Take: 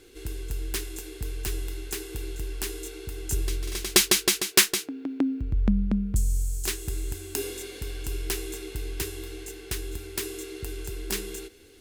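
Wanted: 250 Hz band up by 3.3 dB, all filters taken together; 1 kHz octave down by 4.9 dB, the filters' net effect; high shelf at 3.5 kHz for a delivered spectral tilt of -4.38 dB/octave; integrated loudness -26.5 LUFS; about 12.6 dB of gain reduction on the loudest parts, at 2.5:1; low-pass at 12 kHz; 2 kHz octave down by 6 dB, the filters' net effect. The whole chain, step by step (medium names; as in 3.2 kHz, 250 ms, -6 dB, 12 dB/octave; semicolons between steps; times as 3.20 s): low-pass 12 kHz; peaking EQ 250 Hz +4.5 dB; peaking EQ 1 kHz -4.5 dB; peaking EQ 2 kHz -5.5 dB; treble shelf 3.5 kHz -3.5 dB; compression 2.5:1, threshold -36 dBFS; trim +12 dB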